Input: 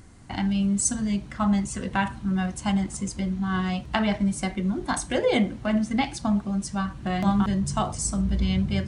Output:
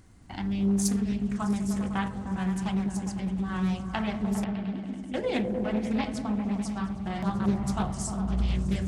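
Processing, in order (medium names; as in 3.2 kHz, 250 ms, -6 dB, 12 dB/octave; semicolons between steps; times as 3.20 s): crackle 430 per s -54 dBFS; 4.44–5.14 s: cascade formant filter i; delay with an opening low-pass 101 ms, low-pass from 200 Hz, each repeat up 1 oct, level 0 dB; loudspeaker Doppler distortion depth 0.51 ms; trim -7 dB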